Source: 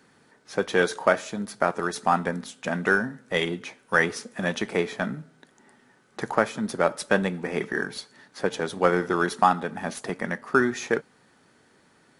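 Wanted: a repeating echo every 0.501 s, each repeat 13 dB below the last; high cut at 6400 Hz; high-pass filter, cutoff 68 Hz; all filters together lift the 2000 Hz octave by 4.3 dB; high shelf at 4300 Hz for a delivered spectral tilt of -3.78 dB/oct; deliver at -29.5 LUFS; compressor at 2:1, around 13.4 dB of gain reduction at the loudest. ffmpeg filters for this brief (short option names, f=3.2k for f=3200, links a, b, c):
-af "highpass=68,lowpass=6.4k,equalizer=f=2k:t=o:g=4.5,highshelf=f=4.3k:g=8,acompressor=threshold=-38dB:ratio=2,aecho=1:1:501|1002|1503:0.224|0.0493|0.0108,volume=5.5dB"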